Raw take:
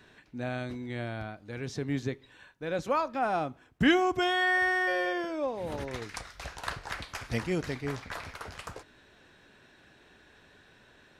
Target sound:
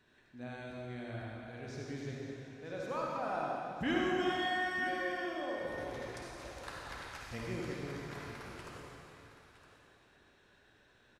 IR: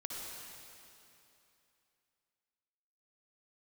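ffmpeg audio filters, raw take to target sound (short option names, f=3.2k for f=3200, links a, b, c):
-filter_complex "[0:a]aecho=1:1:963:0.211[a];[1:a]atrim=start_sample=2205,asetrate=48510,aresample=44100[b];[a][b]afir=irnorm=-1:irlink=0,volume=-7dB"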